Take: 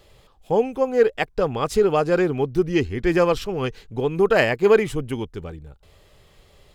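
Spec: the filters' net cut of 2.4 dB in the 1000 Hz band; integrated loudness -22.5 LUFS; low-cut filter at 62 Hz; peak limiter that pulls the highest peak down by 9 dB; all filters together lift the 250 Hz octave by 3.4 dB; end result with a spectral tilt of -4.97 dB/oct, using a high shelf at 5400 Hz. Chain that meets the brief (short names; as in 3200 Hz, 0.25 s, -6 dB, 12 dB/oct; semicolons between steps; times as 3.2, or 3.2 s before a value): HPF 62 Hz; bell 250 Hz +5.5 dB; bell 1000 Hz -3.5 dB; high shelf 5400 Hz -3.5 dB; gain +0.5 dB; limiter -11.5 dBFS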